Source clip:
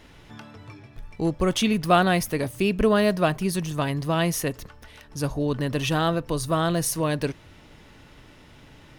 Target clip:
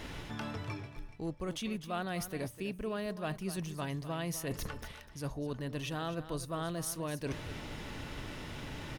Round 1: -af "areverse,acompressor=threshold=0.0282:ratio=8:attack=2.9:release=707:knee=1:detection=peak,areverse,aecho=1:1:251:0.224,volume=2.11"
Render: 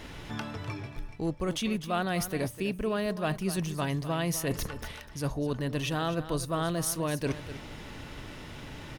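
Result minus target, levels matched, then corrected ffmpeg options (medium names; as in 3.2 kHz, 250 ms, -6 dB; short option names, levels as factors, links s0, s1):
compression: peak gain reduction -7 dB
-af "areverse,acompressor=threshold=0.0112:ratio=8:attack=2.9:release=707:knee=1:detection=peak,areverse,aecho=1:1:251:0.224,volume=2.11"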